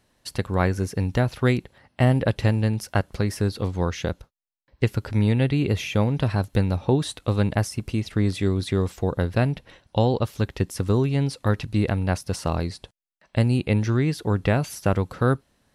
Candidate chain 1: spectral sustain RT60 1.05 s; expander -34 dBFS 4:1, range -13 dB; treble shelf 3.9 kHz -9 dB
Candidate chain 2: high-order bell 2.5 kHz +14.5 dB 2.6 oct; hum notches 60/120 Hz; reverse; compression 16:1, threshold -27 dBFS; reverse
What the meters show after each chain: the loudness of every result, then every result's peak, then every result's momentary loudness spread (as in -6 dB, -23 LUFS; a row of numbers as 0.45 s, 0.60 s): -22.5 LUFS, -32.0 LUFS; -4.5 dBFS, -14.0 dBFS; 5 LU, 4 LU